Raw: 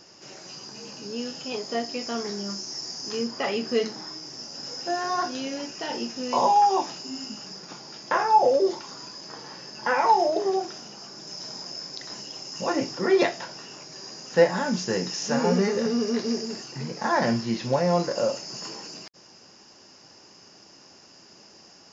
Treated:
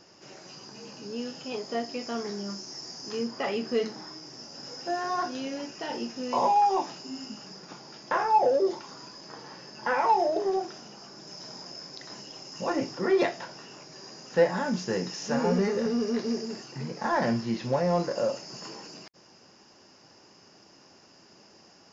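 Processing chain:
in parallel at −7 dB: soft clipping −20 dBFS, distortion −11 dB
on the sum: high-shelf EQ 4,000 Hz −7 dB
level −5 dB

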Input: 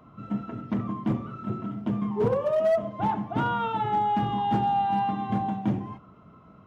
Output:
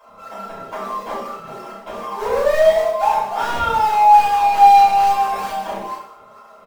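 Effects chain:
high-pass filter 520 Hz 24 dB per octave
comb filter 5 ms, depth 45%
in parallel at −9 dB: sample-and-hold swept by an LFO 20×, swing 100% 2.3 Hz
on the sum: soft clipping −24.5 dBFS, distortion −10 dB
on a send: reverse bouncing-ball delay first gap 30 ms, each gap 1.2×, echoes 5
on the sum: rectangular room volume 220 cubic metres, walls furnished, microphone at 5.4 metres
level −1 dB

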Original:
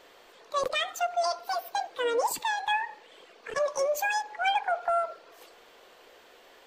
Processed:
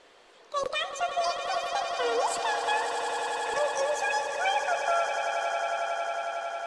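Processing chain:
Butterworth low-pass 11,000 Hz 72 dB per octave
on a send: echo that builds up and dies away 91 ms, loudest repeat 8, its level −11 dB
on the sum: level −1.5 dB

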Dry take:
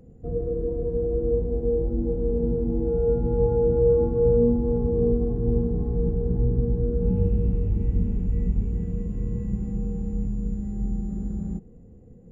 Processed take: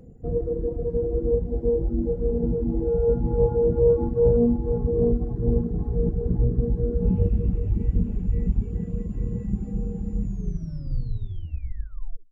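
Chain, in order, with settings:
turntable brake at the end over 2.09 s
reverb reduction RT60 1.1 s
highs frequency-modulated by the lows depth 0.16 ms
level +3 dB

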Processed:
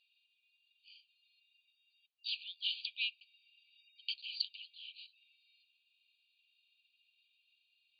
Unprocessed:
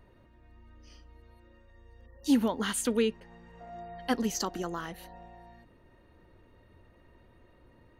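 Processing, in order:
linear-phase brick-wall band-pass 2,300–4,800 Hz
level +3.5 dB

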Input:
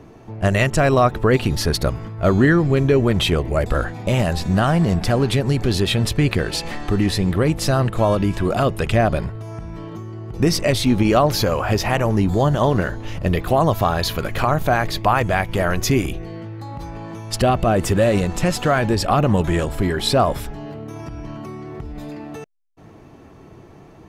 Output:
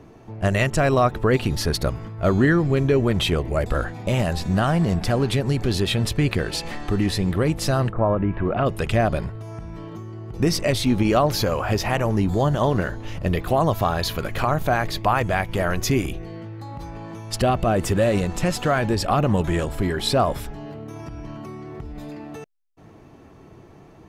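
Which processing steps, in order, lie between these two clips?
0:07.91–0:08.65: low-pass filter 1,500 Hz → 2,900 Hz 24 dB per octave
level −3 dB

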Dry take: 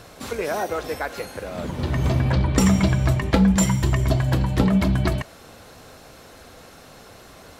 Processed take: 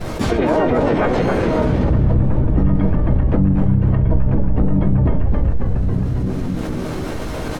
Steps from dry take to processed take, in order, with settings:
downward expander −36 dBFS
treble cut that deepens with the level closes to 1,200 Hz, closed at −19.5 dBFS
high-shelf EQ 2,300 Hz −7.5 dB
notch filter 940 Hz, Q 11
tuned comb filter 310 Hz, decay 0.26 s, harmonics all, mix 80%
on a send: echo with shifted repeats 272 ms, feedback 54%, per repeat −63 Hz, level −4.5 dB
on the sum: speech leveller within 3 dB 0.5 s
low-shelf EQ 310 Hz +7.5 dB
far-end echo of a speakerphone 380 ms, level −16 dB
pitch-shifted copies added −12 semitones −5 dB, −5 semitones −3 dB, +7 semitones −7 dB
envelope flattener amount 70%
level +3.5 dB

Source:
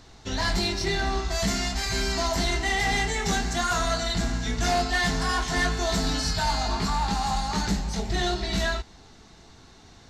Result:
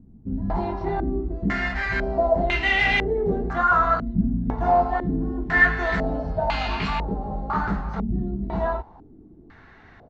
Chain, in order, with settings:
pitch-shifted copies added −5 semitones −16 dB
low-pass on a step sequencer 2 Hz 220–2,600 Hz

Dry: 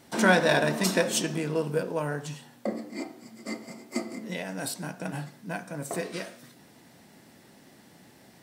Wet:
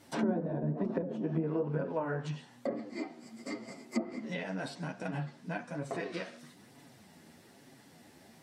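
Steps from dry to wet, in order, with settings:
multi-voice chorus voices 2, 1.1 Hz, delay 10 ms, depth 3 ms
treble cut that deepens with the level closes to 320 Hz, closed at −24.5 dBFS

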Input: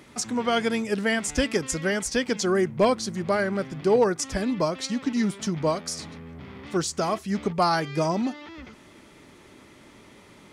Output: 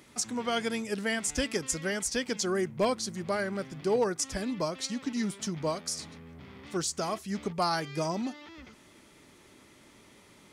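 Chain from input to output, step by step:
high-shelf EQ 4,200 Hz +7.5 dB
level −7 dB

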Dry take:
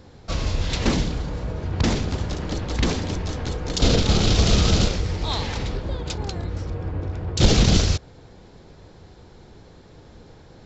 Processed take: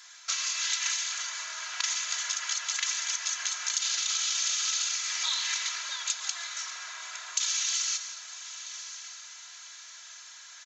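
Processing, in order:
high-pass filter 1,400 Hz 24 dB per octave
parametric band 6,500 Hz +14 dB 0.29 octaves
comb filter 3 ms, depth 81%
in parallel at +1 dB: brickwall limiter −16 dBFS, peak gain reduction 12 dB
on the sum: downward compressor, threshold −26 dBFS, peak gain reduction 13.5 dB
feedback delay with all-pass diffusion 1,082 ms, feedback 44%, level −12 dB
on a send at −8 dB: convolution reverb RT60 2.1 s, pre-delay 108 ms
on the sum: level −1.5 dB

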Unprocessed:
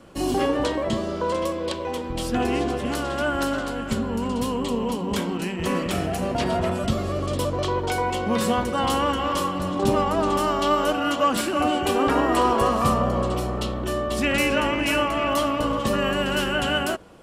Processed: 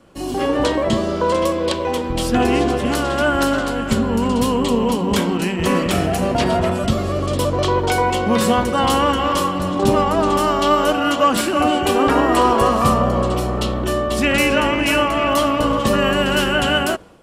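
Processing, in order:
automatic gain control gain up to 11.5 dB
level −2.5 dB

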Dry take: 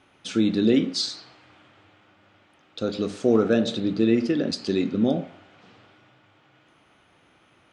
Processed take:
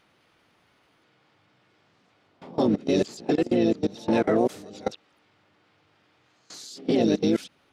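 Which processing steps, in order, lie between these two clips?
played backwards from end to start
pitch-shifted copies added −5 semitones −16 dB, +3 semitones −10 dB, +7 semitones −3 dB
output level in coarse steps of 22 dB
level +1.5 dB

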